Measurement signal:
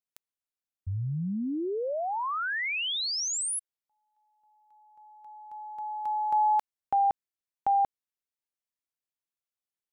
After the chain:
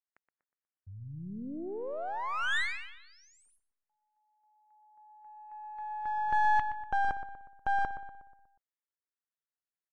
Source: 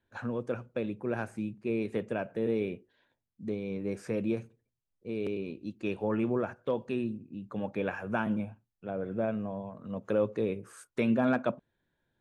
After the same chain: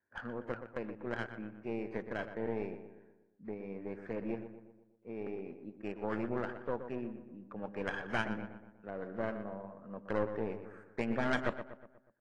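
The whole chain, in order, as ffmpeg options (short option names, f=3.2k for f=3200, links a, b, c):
-filter_complex "[0:a]highpass=f=220:p=1,highshelf=f=2.6k:t=q:w=3:g=-12,aeval=exprs='0.2*(cos(1*acos(clip(val(0)/0.2,-1,1)))-cos(1*PI/2))+0.00126*(cos(2*acos(clip(val(0)/0.2,-1,1)))-cos(2*PI/2))+0.00251*(cos(3*acos(clip(val(0)/0.2,-1,1)))-cos(3*PI/2))+0.0708*(cos(4*acos(clip(val(0)/0.2,-1,1)))-cos(4*PI/2))+0.0158*(cos(6*acos(clip(val(0)/0.2,-1,1)))-cos(6*PI/2))':c=same,adynamicsmooth=sensitivity=5.5:basefreq=3.5k,asplit=2[a][b];[b]adelay=121,lowpass=f=2.4k:p=1,volume=-9.5dB,asplit=2[c][d];[d]adelay=121,lowpass=f=2.4k:p=1,volume=0.51,asplit=2[e][f];[f]adelay=121,lowpass=f=2.4k:p=1,volume=0.51,asplit=2[g][h];[h]adelay=121,lowpass=f=2.4k:p=1,volume=0.51,asplit=2[i][j];[j]adelay=121,lowpass=f=2.4k:p=1,volume=0.51,asplit=2[k][l];[l]adelay=121,lowpass=f=2.4k:p=1,volume=0.51[m];[c][e][g][i][k][m]amix=inputs=6:normalize=0[n];[a][n]amix=inputs=2:normalize=0,volume=-6.5dB" -ar 22050 -c:a aac -b:a 32k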